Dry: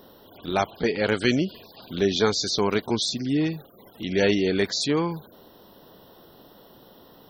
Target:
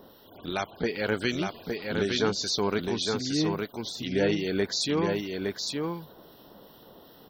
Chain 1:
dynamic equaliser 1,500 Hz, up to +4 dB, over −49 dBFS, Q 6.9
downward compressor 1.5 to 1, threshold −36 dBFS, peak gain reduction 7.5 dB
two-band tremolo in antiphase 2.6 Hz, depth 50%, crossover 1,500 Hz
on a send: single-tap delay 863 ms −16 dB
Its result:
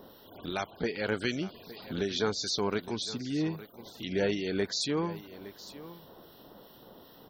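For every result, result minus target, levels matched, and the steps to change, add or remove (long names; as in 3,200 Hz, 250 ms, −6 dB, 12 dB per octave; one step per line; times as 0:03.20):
echo-to-direct −12 dB; downward compressor: peak gain reduction +3 dB
change: single-tap delay 863 ms −4 dB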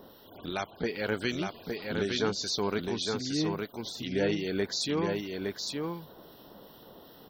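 downward compressor: peak gain reduction +3 dB
change: downward compressor 1.5 to 1, threshold −26.5 dBFS, peak gain reduction 4 dB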